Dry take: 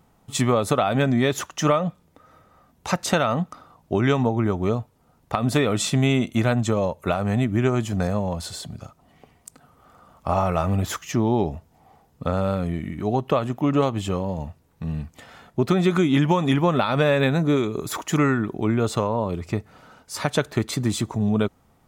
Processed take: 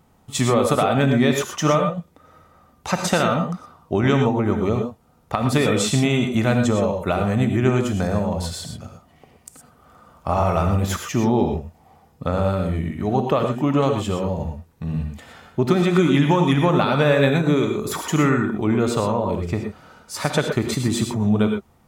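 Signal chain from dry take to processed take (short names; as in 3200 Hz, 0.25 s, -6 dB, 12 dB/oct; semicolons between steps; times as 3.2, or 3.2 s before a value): non-linear reverb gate 0.14 s rising, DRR 4 dB; gain +1 dB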